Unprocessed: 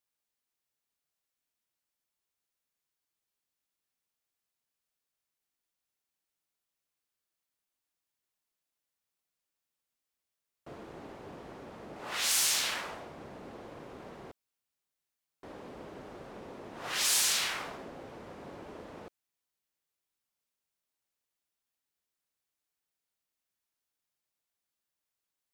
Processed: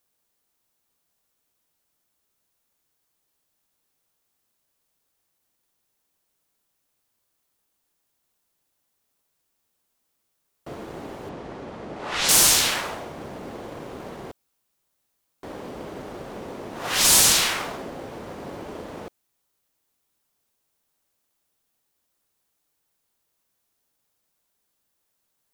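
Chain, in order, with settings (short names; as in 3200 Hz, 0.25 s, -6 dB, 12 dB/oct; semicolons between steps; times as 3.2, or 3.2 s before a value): high shelf 6900 Hz +5.5 dB; in parallel at -12 dB: sample-and-hold 17×; 11.29–12.29 on the sum: air absorption 74 m; gain +8.5 dB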